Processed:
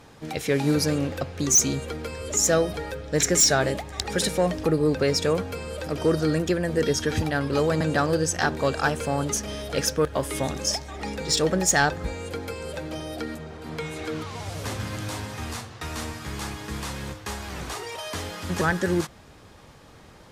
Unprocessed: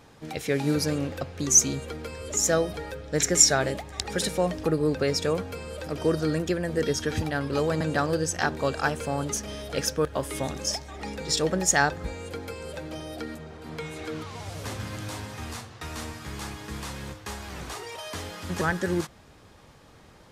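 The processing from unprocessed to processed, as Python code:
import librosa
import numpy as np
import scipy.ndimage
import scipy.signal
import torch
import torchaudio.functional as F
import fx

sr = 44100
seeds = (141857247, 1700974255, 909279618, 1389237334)

y = fx.fold_sine(x, sr, drive_db=8, ceiling_db=-4.0)
y = y * librosa.db_to_amplitude(-8.5)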